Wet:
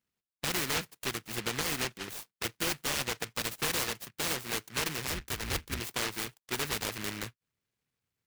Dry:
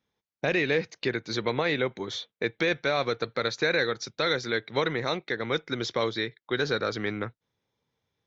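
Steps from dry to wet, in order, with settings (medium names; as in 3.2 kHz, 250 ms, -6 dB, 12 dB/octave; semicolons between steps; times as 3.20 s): 5.07–5.80 s: octave divider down 2 oct, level +3 dB; delay time shaken by noise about 1.9 kHz, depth 0.47 ms; trim -6.5 dB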